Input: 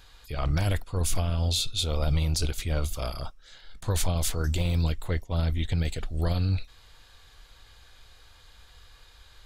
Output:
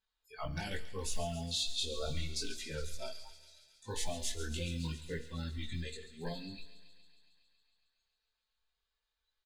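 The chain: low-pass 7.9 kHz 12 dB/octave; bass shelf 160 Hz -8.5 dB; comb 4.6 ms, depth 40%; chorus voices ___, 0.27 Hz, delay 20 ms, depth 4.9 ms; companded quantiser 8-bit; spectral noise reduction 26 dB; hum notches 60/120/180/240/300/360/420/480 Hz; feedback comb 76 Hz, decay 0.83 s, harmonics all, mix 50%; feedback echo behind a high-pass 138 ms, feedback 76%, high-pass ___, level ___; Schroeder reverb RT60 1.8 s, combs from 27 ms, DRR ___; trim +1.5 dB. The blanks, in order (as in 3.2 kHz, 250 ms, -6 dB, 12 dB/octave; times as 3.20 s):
4, 2.4 kHz, -12.5 dB, 17.5 dB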